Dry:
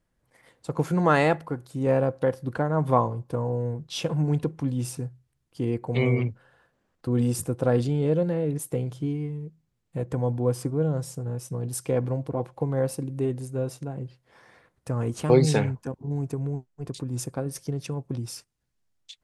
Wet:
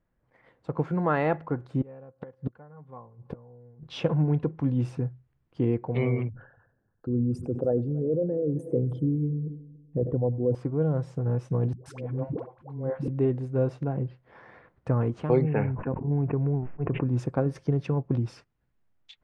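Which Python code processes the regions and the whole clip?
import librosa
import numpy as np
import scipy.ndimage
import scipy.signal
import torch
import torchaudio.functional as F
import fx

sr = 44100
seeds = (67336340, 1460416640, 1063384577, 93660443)

y = fx.chain(x, sr, fx.gate_flip(shuts_db=-23.0, range_db=-28),
    fx.notch_comb(f0_hz=320.0), at=(1.81, 3.83))
y = fx.chain(y, sr, fx.envelope_sharpen(power=2.0),
    fx.echo_heads(ms=94, heads='first and third', feedback_pct=42, wet_db=-21.5),
    fx.sustainer(db_per_s=91.0), at=(6.29, 10.55))
y = fx.chain(y, sr, fx.auto_swell(attack_ms=594.0),
    fx.dispersion(late='highs', ms=127.0, hz=430.0), at=(11.73, 13.08))
y = fx.chain(y, sr, fx.steep_lowpass(hz=2800.0, slope=96),
    fx.sustainer(db_per_s=68.0), at=(15.41, 17.09))
y = scipy.signal.sosfilt(scipy.signal.butter(2, 2000.0, 'lowpass', fs=sr, output='sos'), y)
y = fx.rider(y, sr, range_db=5, speed_s=0.5)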